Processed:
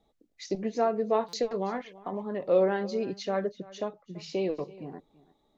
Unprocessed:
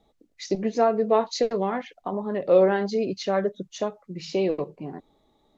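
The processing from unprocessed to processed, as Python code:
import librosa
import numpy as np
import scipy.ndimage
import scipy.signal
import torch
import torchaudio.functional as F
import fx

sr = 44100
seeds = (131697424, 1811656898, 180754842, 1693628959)

p1 = fx.lowpass(x, sr, hz=5200.0, slope=12, at=(3.57, 4.13))
p2 = p1 + fx.echo_single(p1, sr, ms=333, db=-20.0, dry=0)
p3 = fx.buffer_glitch(p2, sr, at_s=(1.28,), block=256, repeats=8)
y = p3 * librosa.db_to_amplitude(-5.5)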